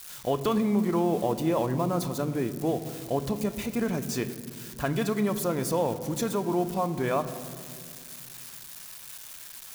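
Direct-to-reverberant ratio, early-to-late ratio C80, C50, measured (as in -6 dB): 10.0 dB, 13.5 dB, 12.5 dB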